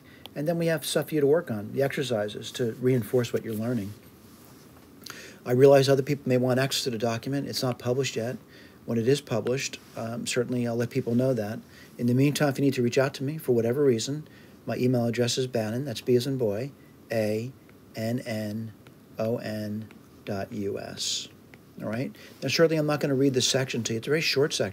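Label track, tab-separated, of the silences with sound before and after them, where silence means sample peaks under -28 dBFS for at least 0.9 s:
3.840000	5.060000	silence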